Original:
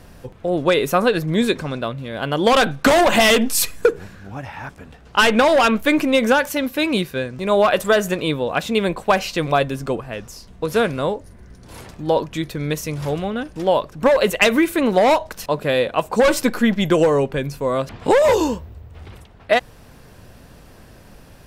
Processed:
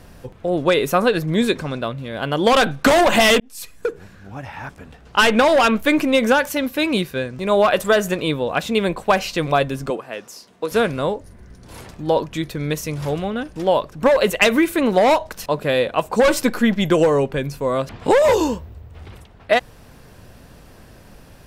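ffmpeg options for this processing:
ffmpeg -i in.wav -filter_complex "[0:a]asettb=1/sr,asplit=3[link_01][link_02][link_03];[link_01]atrim=end=9.904[link_04];[link_02]atrim=start=9.9:end=10.72,asetpts=PTS-STARTPTS,afade=type=in:duration=0.004:curve=qsin,afade=type=out:start_time=0.816:duration=0.004:curve=qsin,highpass=290[link_05];[link_03]atrim=start=10.716[link_06];[link_04][link_05]acrossfade=duration=0.004:curve1=hsin:curve2=qsin[link_07];[link_07][link_06]acrossfade=duration=0.004:curve1=qsin:curve2=hsin,asplit=2[link_08][link_09];[link_08]atrim=end=3.4,asetpts=PTS-STARTPTS,afade=type=out:start_time=3.396:duration=0.004:curve=hsin[link_10];[link_09]atrim=start=3.4,asetpts=PTS-STARTPTS,afade=type=in:duration=1.17[link_11];[link_10][link_11]concat=n=2:v=0:a=1" out.wav

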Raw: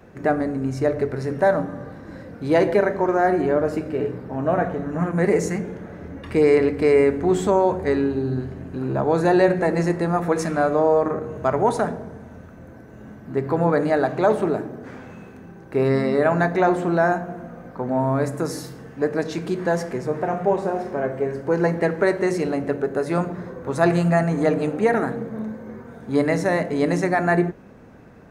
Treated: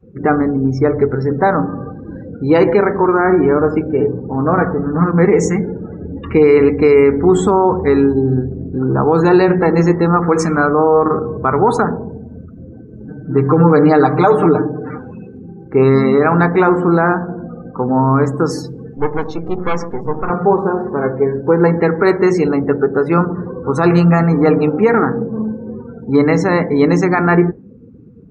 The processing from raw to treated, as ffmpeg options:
ffmpeg -i in.wav -filter_complex "[0:a]asettb=1/sr,asplit=3[link_01][link_02][link_03];[link_01]atrim=end=13.084[link_04];[link_02]atrim=start=13.08:end=14.98,asetpts=PTS-STARTPTS,afade=type=in:duration=0.004:curve=qsin,afade=type=out:start_time=1.896:duration=0.004:curve=qsin,aecho=1:1:6.6:0.99,atrim=end_sample=83790[link_05];[link_03]atrim=start=14.976[link_06];[link_04][link_05]acrossfade=duration=0.004:curve1=hsin:curve2=qsin[link_07];[link_07][link_06]acrossfade=duration=0.004:curve1=qsin:curve2=hsin,asettb=1/sr,asplit=3[link_08][link_09][link_10];[link_08]atrim=end=18.974[link_11];[link_09]atrim=start=18.97:end=20.3,asetpts=PTS-STARTPTS,afade=type=in:duration=0.004:curve=qsin,afade=type=out:start_time=1.326:duration=0.004:curve=qsin,aeval=exprs='max(val(0),0)':channel_layout=same[link_12];[link_10]atrim=start=20.296[link_13];[link_11][link_12]acrossfade=duration=0.004:curve1=hsin:curve2=qsin[link_14];[link_14][link_13]acrossfade=duration=0.004:curve1=qsin:curve2=hsin,afftdn=noise_reduction=30:noise_floor=-38,superequalizer=8b=0.355:10b=1.58:11b=0.631:16b=0.501,alimiter=level_in=10.5dB:limit=-1dB:release=50:level=0:latency=1,volume=-1dB" out.wav

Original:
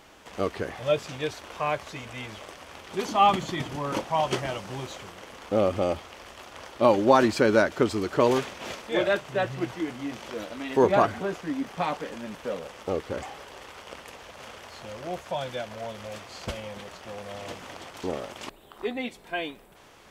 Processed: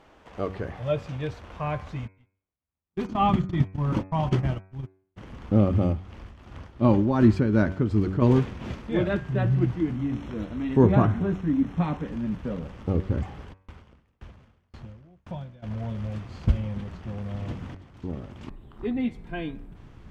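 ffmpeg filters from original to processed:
ffmpeg -i in.wav -filter_complex "[0:a]asplit=3[link_01][link_02][link_03];[link_01]afade=type=out:start_time=2.06:duration=0.02[link_04];[link_02]agate=range=-50dB:threshold=-33dB:ratio=16:release=100:detection=peak,afade=type=in:start_time=2.06:duration=0.02,afade=type=out:start_time=5.16:duration=0.02[link_05];[link_03]afade=type=in:start_time=5.16:duration=0.02[link_06];[link_04][link_05][link_06]amix=inputs=3:normalize=0,asettb=1/sr,asplit=3[link_07][link_08][link_09];[link_07]atrim=end=5.814[link_10];[link_08]atrim=start=5.81:end=8.22,asetpts=PTS-STARTPTS,afade=type=in:duration=0.004:curve=qsin,afade=type=out:start_time=2.406:duration=0.004:curve=qsin,tremolo=f=2.7:d=0.59[link_11];[link_09]atrim=start=8.216[link_12];[link_10][link_11]acrossfade=duration=0.004:curve1=hsin:curve2=qsin[link_13];[link_13][link_12]acrossfade=duration=0.004:curve1=qsin:curve2=hsin,asettb=1/sr,asplit=3[link_14][link_15][link_16];[link_14]atrim=end=9.954[link_17];[link_15]atrim=start=9.95:end=12.08,asetpts=PTS-STARTPTS,afade=type=in:duration=0.004:curve=qsin,afade=type=out:start_time=2.126:duration=0.004:curve=qsin,asuperstop=centerf=4700:order=20:qfactor=6.8[link_18];[link_16]atrim=start=12.076[link_19];[link_17][link_18]acrossfade=duration=0.004:curve1=hsin:curve2=qsin[link_20];[link_20][link_19]acrossfade=duration=0.004:curve1=qsin:curve2=hsin,asplit=3[link_21][link_22][link_23];[link_21]afade=type=out:start_time=13.52:duration=0.02[link_24];[link_22]aeval=exprs='val(0)*pow(10,-35*if(lt(mod(1.9*n/s,1),2*abs(1.9)/1000),1-mod(1.9*n/s,1)/(2*abs(1.9)/1000),(mod(1.9*n/s,1)-2*abs(1.9)/1000)/(1-2*abs(1.9)/1000))/20)':channel_layout=same,afade=type=in:start_time=13.52:duration=0.02,afade=type=out:start_time=15.62:duration=0.02[link_25];[link_23]afade=type=in:start_time=15.62:duration=0.02[link_26];[link_24][link_25][link_26]amix=inputs=3:normalize=0,asplit=2[link_27][link_28];[link_27]atrim=end=17.75,asetpts=PTS-STARTPTS,afade=type=out:start_time=17.746:duration=0.004:curve=hsin:silence=0.237137[link_29];[link_28]atrim=start=17.75,asetpts=PTS-STARTPTS,afade=type=in:duration=1.28:silence=0.237137[link_30];[link_29][link_30]concat=n=2:v=0:a=1,lowpass=frequency=1300:poles=1,bandreject=frequency=94.89:width_type=h:width=4,bandreject=frequency=189.78:width_type=h:width=4,bandreject=frequency=284.67:width_type=h:width=4,bandreject=frequency=379.56:width_type=h:width=4,bandreject=frequency=474.45:width_type=h:width=4,bandreject=frequency=569.34:width_type=h:width=4,bandreject=frequency=664.23:width_type=h:width=4,bandreject=frequency=759.12:width_type=h:width=4,bandreject=frequency=854.01:width_type=h:width=4,bandreject=frequency=948.9:width_type=h:width=4,bandreject=frequency=1043.79:width_type=h:width=4,bandreject=frequency=1138.68:width_type=h:width=4,bandreject=frequency=1233.57:width_type=h:width=4,bandreject=frequency=1328.46:width_type=h:width=4,bandreject=frequency=1423.35:width_type=h:width=4,bandreject=frequency=1518.24:width_type=h:width=4,bandreject=frequency=1613.13:width_type=h:width=4,bandreject=frequency=1708.02:width_type=h:width=4,bandreject=frequency=1802.91:width_type=h:width=4,bandreject=frequency=1897.8:width_type=h:width=4,bandreject=frequency=1992.69:width_type=h:width=4,bandreject=frequency=2087.58:width_type=h:width=4,bandreject=frequency=2182.47:width_type=h:width=4,bandreject=frequency=2277.36:width_type=h:width=4,bandreject=frequency=2372.25:width_type=h:width=4,bandreject=frequency=2467.14:width_type=h:width=4,bandreject=frequency=2562.03:width_type=h:width=4,asubboost=boost=9.5:cutoff=180" out.wav

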